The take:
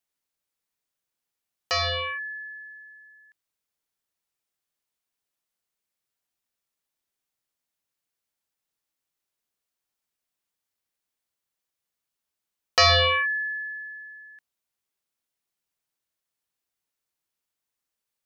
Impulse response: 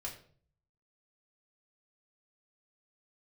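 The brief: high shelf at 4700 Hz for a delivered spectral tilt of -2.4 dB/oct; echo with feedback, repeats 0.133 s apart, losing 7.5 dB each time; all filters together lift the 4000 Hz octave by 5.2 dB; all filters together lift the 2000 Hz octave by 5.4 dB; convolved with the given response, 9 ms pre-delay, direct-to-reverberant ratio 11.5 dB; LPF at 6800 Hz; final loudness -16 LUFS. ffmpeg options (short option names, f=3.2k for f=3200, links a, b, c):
-filter_complex "[0:a]lowpass=6.8k,equalizer=f=2k:t=o:g=5.5,equalizer=f=4k:t=o:g=7,highshelf=f=4.7k:g=-4,aecho=1:1:133|266|399|532|665:0.422|0.177|0.0744|0.0312|0.0131,asplit=2[a][b];[1:a]atrim=start_sample=2205,adelay=9[c];[b][c]afir=irnorm=-1:irlink=0,volume=-10dB[d];[a][d]amix=inputs=2:normalize=0,volume=0.5dB"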